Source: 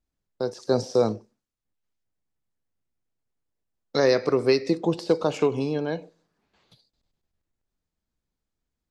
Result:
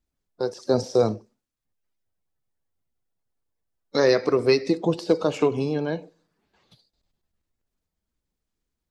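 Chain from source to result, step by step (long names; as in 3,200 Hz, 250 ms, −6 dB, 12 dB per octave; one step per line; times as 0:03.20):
spectral magnitudes quantised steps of 15 dB
level +1.5 dB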